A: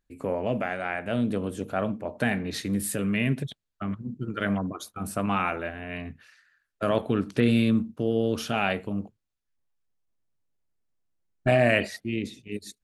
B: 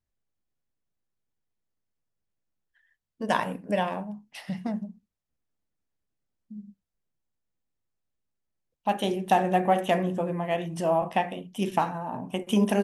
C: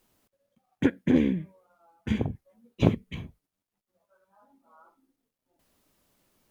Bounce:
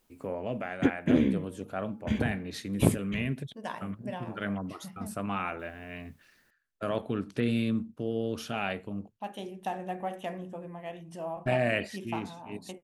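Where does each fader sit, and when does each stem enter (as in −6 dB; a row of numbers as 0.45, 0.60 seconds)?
−6.5, −12.5, −2.0 decibels; 0.00, 0.35, 0.00 seconds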